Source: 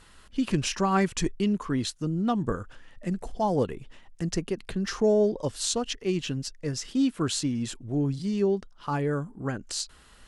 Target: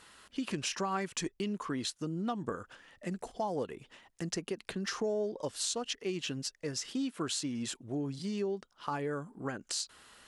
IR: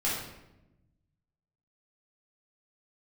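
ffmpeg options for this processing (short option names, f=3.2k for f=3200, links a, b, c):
-af "highpass=f=350:p=1,acompressor=threshold=-33dB:ratio=3"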